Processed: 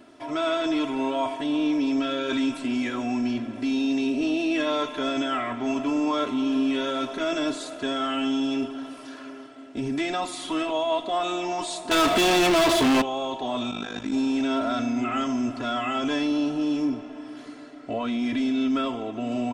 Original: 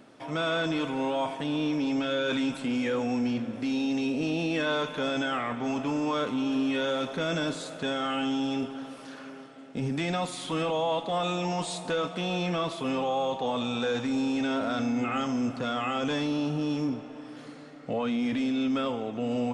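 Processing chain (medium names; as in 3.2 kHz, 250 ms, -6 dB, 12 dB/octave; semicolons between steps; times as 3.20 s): comb 3 ms, depth 91%; 11.91–13.02 s: waveshaping leveller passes 5; 13.71–14.13 s: AM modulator 51 Hz, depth 80%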